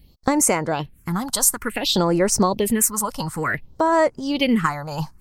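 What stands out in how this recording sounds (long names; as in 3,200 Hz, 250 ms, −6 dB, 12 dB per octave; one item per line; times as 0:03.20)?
phaser sweep stages 4, 0.56 Hz, lowest notch 370–3,400 Hz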